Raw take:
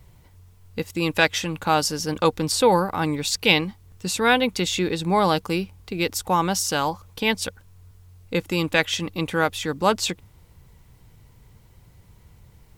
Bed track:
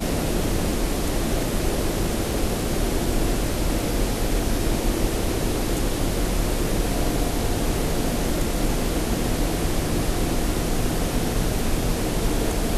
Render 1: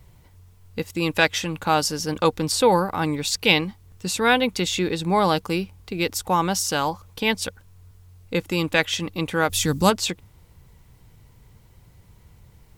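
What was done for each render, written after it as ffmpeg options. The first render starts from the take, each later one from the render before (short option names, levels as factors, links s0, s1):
-filter_complex "[0:a]asplit=3[s0][s1][s2];[s0]afade=t=out:st=9.49:d=0.02[s3];[s1]bass=f=250:g=11,treble=f=4000:g=13,afade=t=in:st=9.49:d=0.02,afade=t=out:st=9.89:d=0.02[s4];[s2]afade=t=in:st=9.89:d=0.02[s5];[s3][s4][s5]amix=inputs=3:normalize=0"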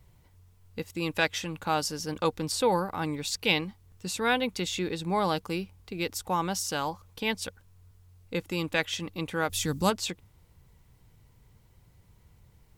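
-af "volume=0.422"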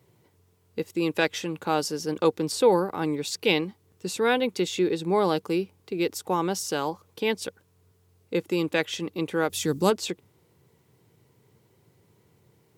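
-af "highpass=f=110:w=0.5412,highpass=f=110:w=1.3066,equalizer=f=390:w=1.8:g=10.5"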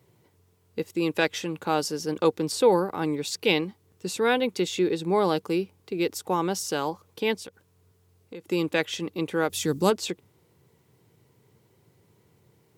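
-filter_complex "[0:a]asettb=1/sr,asplit=3[s0][s1][s2];[s0]atrim=end=7.404[s3];[s1]atrim=start=7.4:end=8.5,asetpts=PTS-STARTPTS,afade=t=in:d=0.004:c=qsin,afade=t=out:st=1.096:d=0.004:c=qsin,acompressor=threshold=0.0141:ratio=6:attack=3.2:release=140:knee=1:detection=peak[s4];[s2]atrim=start=8.496[s5];[s3][s4]acrossfade=d=0.004:c1=hsin:c2=qsin[s6];[s6][s5]acrossfade=d=0.004:c1=qsin:c2=hsin"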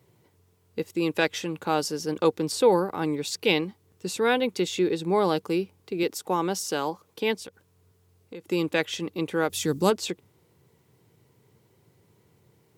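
-filter_complex "[0:a]asettb=1/sr,asplit=3[s0][s1][s2];[s0]atrim=end=6.034[s3];[s1]atrim=start=6.03:end=7.41,asetpts=PTS-STARTPTS,afade=t=in:d=0.004:c=qsin,afade=t=out:st=1.376:d=0.004:c=qsin,highpass=140[s4];[s2]atrim=start=7.406[s5];[s3][s4]acrossfade=d=0.004:c1=hsin:c2=qsin[s6];[s6][s5]acrossfade=d=0.004:c1=qsin:c2=hsin"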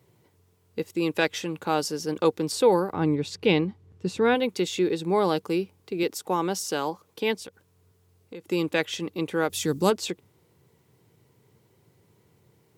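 -filter_complex "[0:a]asplit=3[s0][s1][s2];[s0]afade=t=out:st=2.92:d=0.02[s3];[s1]aemphasis=mode=reproduction:type=bsi,afade=t=in:st=2.92:d=0.02,afade=t=out:st=4.34:d=0.02[s4];[s2]afade=t=in:st=4.34:d=0.02[s5];[s3][s4][s5]amix=inputs=3:normalize=0"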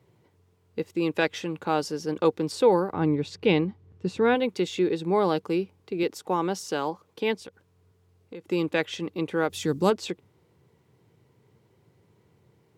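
-af "lowpass=f=3500:p=1"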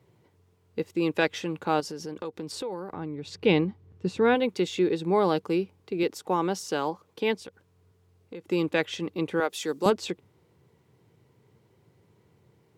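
-filter_complex "[0:a]asettb=1/sr,asplit=3[s0][s1][s2];[s0]atrim=end=1.804[s3];[s1]atrim=start=1.8:end=3.4,asetpts=PTS-STARTPTS,afade=t=in:d=0.004:c=qsin,afade=t=out:st=1.596:d=0.004:c=qsin,acompressor=threshold=0.0224:ratio=4:attack=3.2:release=140:knee=1:detection=peak[s4];[s2]atrim=start=3.396[s5];[s3][s4]acrossfade=d=0.004:c1=hsin:c2=qsin[s6];[s6][s5]acrossfade=d=0.004:c1=qsin:c2=hsin,asettb=1/sr,asplit=3[s7][s8][s9];[s7]atrim=end=9.404[s10];[s8]atrim=start=9.4:end=9.86,asetpts=PTS-STARTPTS,afade=t=in:d=0.004:c=qsin,afade=t=out:st=0.456:d=0.004:c=qsin,highpass=390[s11];[s9]atrim=start=9.856[s12];[s10][s11]acrossfade=d=0.004:c1=hsin:c2=qsin[s13];[s13][s12]acrossfade=d=0.004:c1=qsin:c2=hsin"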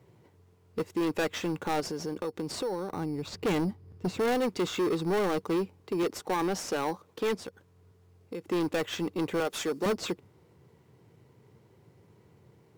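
-filter_complex "[0:a]asplit=2[s0][s1];[s1]acrusher=samples=9:mix=1:aa=0.000001,volume=0.447[s2];[s0][s2]amix=inputs=2:normalize=0,asoftclip=type=tanh:threshold=0.0631"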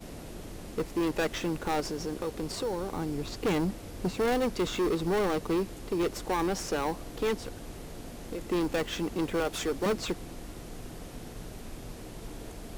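-filter_complex "[1:a]volume=0.106[s0];[0:a][s0]amix=inputs=2:normalize=0"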